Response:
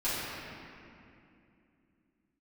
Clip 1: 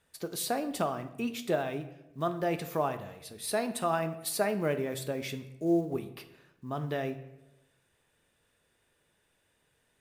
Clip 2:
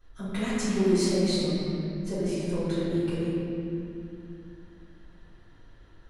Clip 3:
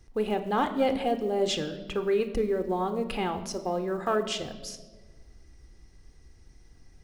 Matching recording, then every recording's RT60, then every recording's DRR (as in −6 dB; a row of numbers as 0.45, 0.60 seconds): 2; 1.0, 2.6, 1.4 seconds; 8.5, −15.0, 8.5 decibels